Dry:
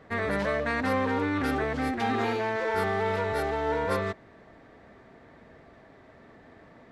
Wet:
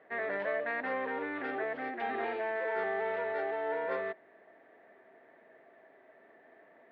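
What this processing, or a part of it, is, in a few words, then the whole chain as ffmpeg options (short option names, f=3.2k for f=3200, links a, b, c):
phone earpiece: -af "highpass=350,equalizer=f=380:t=q:w=4:g=5,equalizer=f=660:t=q:w=4:g=7,equalizer=f=1.2k:t=q:w=4:g=-3,equalizer=f=1.8k:t=q:w=4:g=6,lowpass=f=3.1k:w=0.5412,lowpass=f=3.1k:w=1.3066,volume=-8.5dB"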